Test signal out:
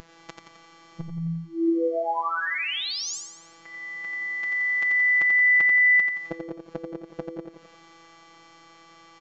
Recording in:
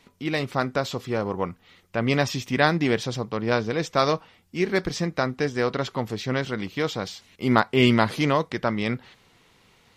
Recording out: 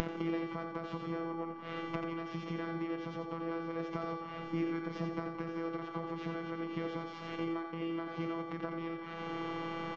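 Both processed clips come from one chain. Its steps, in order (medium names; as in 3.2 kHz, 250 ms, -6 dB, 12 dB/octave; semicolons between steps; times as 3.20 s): spectral levelling over time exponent 0.4; high-pass 43 Hz 24 dB/octave; treble shelf 2.2 kHz -7 dB; de-hum 328 Hz, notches 34; compression 16:1, threshold -29 dBFS; robot voice 166 Hz; on a send: feedback delay 87 ms, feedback 60%, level -4 dB; on the sum: resampled via 16 kHz; spectral contrast expander 1.5:1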